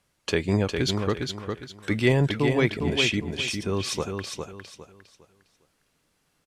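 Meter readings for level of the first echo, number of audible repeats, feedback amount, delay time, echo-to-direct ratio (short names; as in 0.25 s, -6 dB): -5.5 dB, 3, 29%, 0.406 s, -5.0 dB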